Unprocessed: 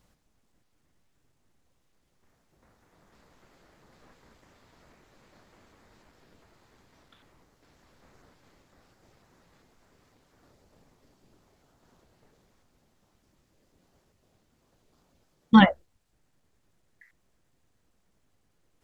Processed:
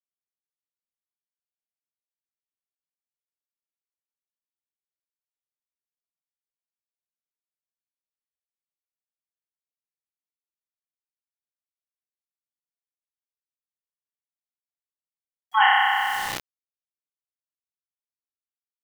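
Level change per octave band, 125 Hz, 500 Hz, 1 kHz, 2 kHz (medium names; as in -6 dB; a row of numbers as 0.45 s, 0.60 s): under -20 dB, under -10 dB, +7.0 dB, +8.5 dB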